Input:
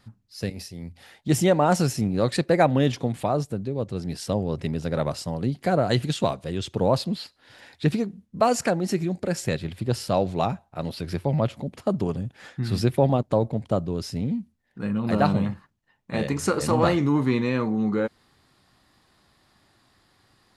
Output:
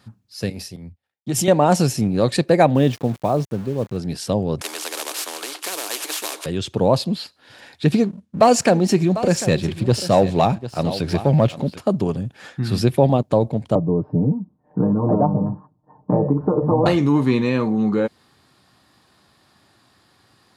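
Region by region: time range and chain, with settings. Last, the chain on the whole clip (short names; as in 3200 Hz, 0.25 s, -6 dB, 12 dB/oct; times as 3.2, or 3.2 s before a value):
0.76–1.48 gate -47 dBFS, range -29 dB + compressor, threshold -24 dBFS + three-band expander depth 70%
2.75–3.97 high shelf 3200 Hz -8 dB + sample gate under -39 dBFS + mismatched tape noise reduction decoder only
4.61–6.46 CVSD 64 kbps + rippled Chebyshev high-pass 300 Hz, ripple 6 dB + spectral compressor 4:1
7.94–11.78 LPF 9900 Hz + echo 0.747 s -14.5 dB + sample leveller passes 1
13.75–16.86 Chebyshev low-pass 1000 Hz, order 4 + comb 6.6 ms, depth 72% + three-band squash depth 100%
whole clip: HPF 84 Hz; notch 2000 Hz, Q 16; dynamic EQ 1400 Hz, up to -5 dB, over -43 dBFS, Q 2.9; gain +5 dB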